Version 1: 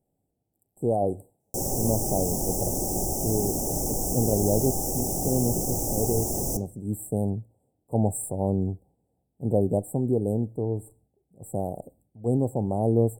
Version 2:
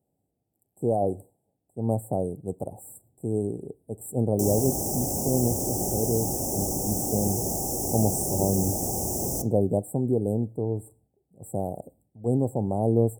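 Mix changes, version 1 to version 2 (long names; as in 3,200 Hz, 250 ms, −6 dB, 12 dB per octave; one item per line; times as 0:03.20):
background: entry +2.85 s
master: add high-pass filter 56 Hz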